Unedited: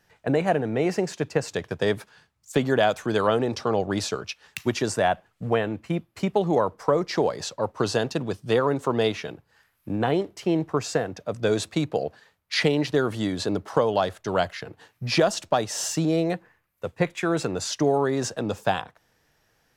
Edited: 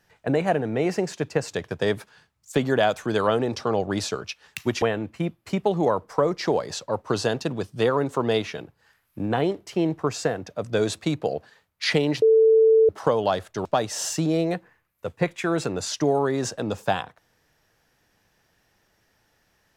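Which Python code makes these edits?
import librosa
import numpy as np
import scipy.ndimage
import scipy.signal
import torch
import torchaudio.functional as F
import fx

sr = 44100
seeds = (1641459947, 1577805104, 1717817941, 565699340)

y = fx.edit(x, sr, fx.cut(start_s=4.82, length_s=0.7),
    fx.bleep(start_s=12.92, length_s=0.67, hz=444.0, db=-12.5),
    fx.cut(start_s=14.35, length_s=1.09), tone=tone)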